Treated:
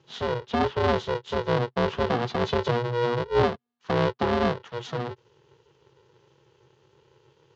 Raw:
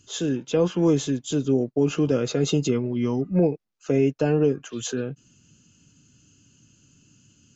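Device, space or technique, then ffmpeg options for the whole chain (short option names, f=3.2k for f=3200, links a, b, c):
ring modulator pedal into a guitar cabinet: -af "aeval=exprs='val(0)*sgn(sin(2*PI*240*n/s))':c=same,highpass=110,equalizer=f=130:t=q:w=4:g=7,equalizer=f=290:t=q:w=4:g=-4,equalizer=f=440:t=q:w=4:g=7,equalizer=f=630:t=q:w=4:g=-6,equalizer=f=930:t=q:w=4:g=4,equalizer=f=2.4k:t=q:w=4:g=-6,lowpass=f=4.1k:w=0.5412,lowpass=f=4.1k:w=1.3066,volume=-2.5dB"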